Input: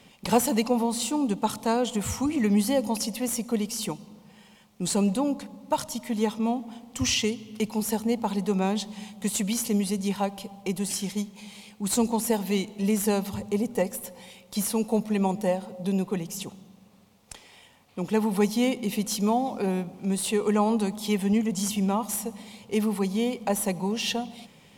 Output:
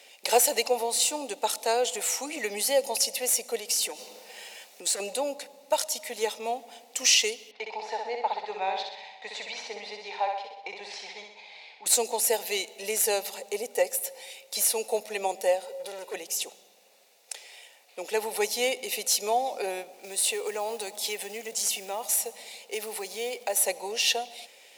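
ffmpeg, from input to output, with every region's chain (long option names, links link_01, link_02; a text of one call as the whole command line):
ffmpeg -i in.wav -filter_complex "[0:a]asettb=1/sr,asplit=3[link_01][link_02][link_03];[link_01]atrim=end=3.594[link_04];[link_02]atrim=start=3.59:end=5,asetpts=PTS-STARTPTS,afade=type=in:duration=0.004:curve=qsin,afade=type=out:start_time=1.406:duration=0.004:curve=qsin,aeval=exprs='0.224*sin(PI/2*1.78*val(0)/0.224)':channel_layout=same,acompressor=threshold=-28dB:ratio=10:attack=3.2:release=140:knee=1:detection=peak[link_05];[link_03]atrim=start=4.996[link_06];[link_04][link_05]acrossfade=duration=0.004:curve1=hsin:curve2=qsin[link_07];[link_07][link_06]acrossfade=duration=0.004:curve1=qsin:curve2=hsin,asettb=1/sr,asplit=3[link_08][link_09][link_10];[link_08]atrim=end=7.514[link_11];[link_09]atrim=start=7.51:end=11.86,asetpts=PTS-STARTPTS,afade=type=in:duration=0.004:curve=qsin,afade=type=out:start_time=4.346:duration=0.004:curve=qsin,highpass=230,equalizer=frequency=230:width_type=q:width=4:gain=-8,equalizer=frequency=380:width_type=q:width=4:gain=-10,equalizer=frequency=550:width_type=q:width=4:gain=-6,equalizer=frequency=910:width_type=q:width=4:gain=6,equalizer=frequency=1400:width_type=q:width=4:gain=-4,equalizer=frequency=2900:width_type=q:width=4:gain=-9,lowpass=frequency=3600:width=0.5412,lowpass=frequency=3600:width=1.3066,aecho=1:1:63|126|189|252|315|378|441:0.596|0.322|0.174|0.0938|0.0506|0.0274|0.0148,atrim=end_sample=191835[link_12];[link_10]atrim=start=11.856[link_13];[link_11][link_12]acrossfade=duration=0.004:curve1=hsin:curve2=qsin[link_14];[link_14][link_13]acrossfade=duration=0.004:curve1=qsin:curve2=hsin,asettb=1/sr,asplit=3[link_15][link_16][link_17];[link_15]atrim=end=15.654[link_18];[link_16]atrim=start=15.65:end=16.14,asetpts=PTS-STARTPTS,afade=type=in:duration=0.004:curve=qsin,afade=type=out:start_time=0.486:duration=0.004:curve=qsin,volume=29.5dB,asoftclip=hard,volume=-29.5dB,aecho=1:1:2.1:0.51,atrim=end_sample=21609[link_19];[link_17]atrim=start=16.136[link_20];[link_18][link_19]acrossfade=duration=0.004:curve1=hsin:curve2=qsin[link_21];[link_21][link_20]acrossfade=duration=0.004:curve1=qsin:curve2=hsin,asettb=1/sr,asplit=3[link_22][link_23][link_24];[link_22]atrim=end=19.914[link_25];[link_23]atrim=start=19.91:end=23.57,asetpts=PTS-STARTPTS,afade=type=in:duration=0.004:curve=qsin,afade=type=out:start_time=3.656:duration=0.004:curve=qsin,acompressor=threshold=-27dB:ratio=2:attack=3.2:release=140:knee=1:detection=peak,acrusher=bits=7:mode=log:mix=0:aa=0.000001[link_26];[link_24]atrim=start=23.566[link_27];[link_25][link_26]acrossfade=duration=0.004:curve1=hsin:curve2=qsin[link_28];[link_28][link_27]acrossfade=duration=0.004:curve1=qsin:curve2=hsin,highpass=frequency=520:width=0.5412,highpass=frequency=520:width=1.3066,equalizer=frequency=1100:width_type=o:width=0.76:gain=-14.5,bandreject=frequency=3200:width=12,volume=6.5dB" out.wav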